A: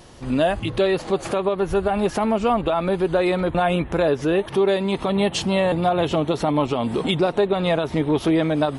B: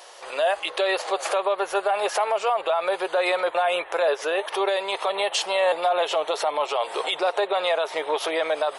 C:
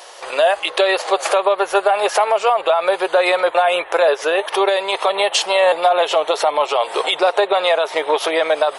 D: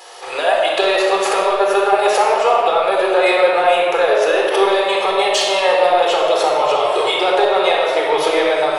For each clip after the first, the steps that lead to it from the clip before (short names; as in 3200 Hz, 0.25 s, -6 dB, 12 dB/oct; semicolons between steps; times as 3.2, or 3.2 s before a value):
inverse Chebyshev high-pass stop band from 260 Hz, stop band 40 dB; limiter -18.5 dBFS, peak gain reduction 8 dB; gain +4.5 dB
transient shaper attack +3 dB, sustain -1 dB; gain +6.5 dB
in parallel at -6.5 dB: soft clip -13 dBFS, distortion -13 dB; on the sum: shoebox room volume 2800 m³, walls mixed, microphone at 4 m; gain -6.5 dB